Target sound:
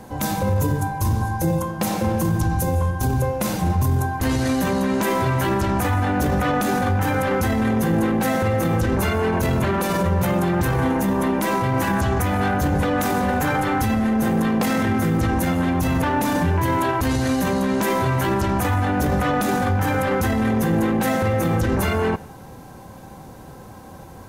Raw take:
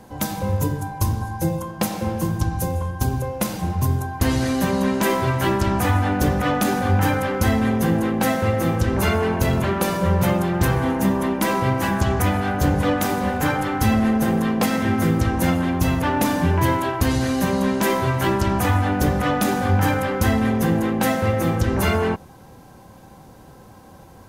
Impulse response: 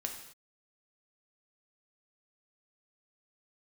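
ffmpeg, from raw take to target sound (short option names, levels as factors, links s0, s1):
-filter_complex "[0:a]alimiter=limit=0.133:level=0:latency=1:release=16,asplit=2[s0][s1];[s1]asuperstop=centerf=3900:order=20:qfactor=5.5[s2];[1:a]atrim=start_sample=2205[s3];[s2][s3]afir=irnorm=-1:irlink=0,volume=0.188[s4];[s0][s4]amix=inputs=2:normalize=0,volume=1.5"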